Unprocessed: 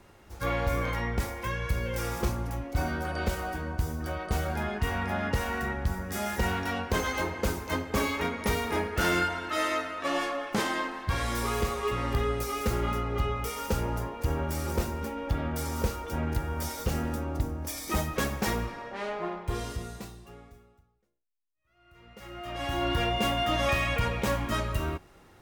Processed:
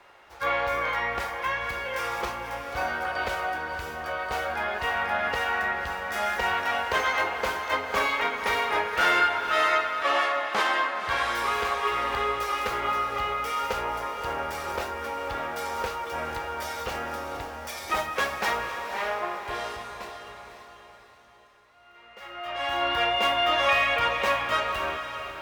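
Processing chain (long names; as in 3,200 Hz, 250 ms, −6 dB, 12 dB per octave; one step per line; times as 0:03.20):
three-way crossover with the lows and the highs turned down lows −22 dB, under 530 Hz, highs −13 dB, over 4,100 Hz
feedback delay with all-pass diffusion 530 ms, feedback 45%, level −8.5 dB
level +7 dB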